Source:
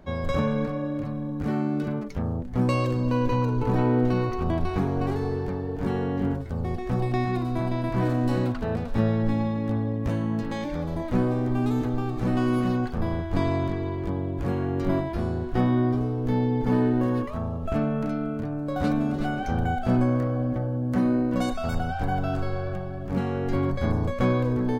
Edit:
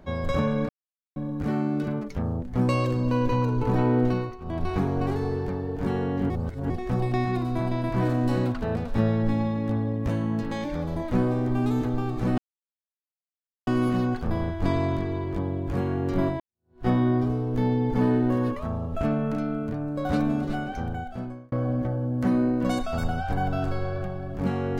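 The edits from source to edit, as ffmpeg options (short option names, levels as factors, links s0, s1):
-filter_complex "[0:a]asplit=10[s0][s1][s2][s3][s4][s5][s6][s7][s8][s9];[s0]atrim=end=0.69,asetpts=PTS-STARTPTS,afade=t=out:st=0.686:d=0.004:c=hsin[s10];[s1]atrim=start=0.69:end=1.16,asetpts=PTS-STARTPTS,volume=0[s11];[s2]atrim=start=1.16:end=4.38,asetpts=PTS-STARTPTS,afade=t=in:d=0.004:c=hsin,afade=t=out:st=2.92:d=0.3:silence=0.177828[s12];[s3]atrim=start=4.38:end=4.4,asetpts=PTS-STARTPTS,volume=0.178[s13];[s4]atrim=start=4.4:end=6.302,asetpts=PTS-STARTPTS,afade=t=in:d=0.3:silence=0.177828[s14];[s5]atrim=start=6.298:end=6.702,asetpts=PTS-STARTPTS,areverse[s15];[s6]atrim=start=6.698:end=12.38,asetpts=PTS-STARTPTS,afade=t=out:st=5.678:d=0.004:c=hsin,apad=pad_dur=1.29[s16];[s7]atrim=start=12.38:end=15.11,asetpts=PTS-STARTPTS,afade=t=in:d=0.004:c=hsin,afade=t=out:st=2.726:d=0.004:c=hsin[s17];[s8]atrim=start=15.11:end=20.23,asetpts=PTS-STARTPTS,afade=t=in:d=0.47:c=exp,afade=t=out:st=3.92:d=1.2[s18];[s9]atrim=start=20.23,asetpts=PTS-STARTPTS,afade=t=in:d=0.004:c=hsin[s19];[s10][s11][s12][s13][s14]concat=n=5:v=0:a=1[s20];[s20][s15]acrossfade=d=0.004:c1=hsin:c2=hsin[s21];[s16][s17][s18][s19]concat=n=4:v=0:a=1[s22];[s21][s22]acrossfade=d=0.004:c1=hsin:c2=hsin"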